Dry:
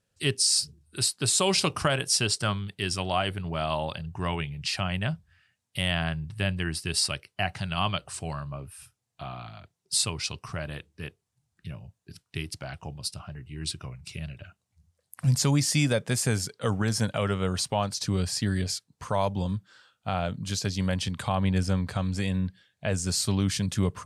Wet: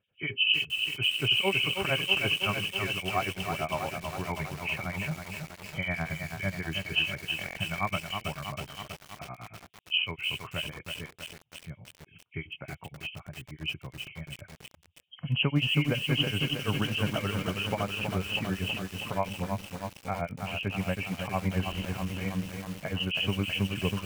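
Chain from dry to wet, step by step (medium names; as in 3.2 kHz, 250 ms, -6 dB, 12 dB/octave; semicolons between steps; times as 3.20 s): knee-point frequency compression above 2.1 kHz 4:1; high-pass 87 Hz 6 dB/octave; harmonic tremolo 8.8 Hz, depth 100%, crossover 2.3 kHz; buffer glitch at 7.37/8.97/21.66 s, samples 1024, times 7; bit-crushed delay 322 ms, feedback 80%, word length 7-bit, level -5 dB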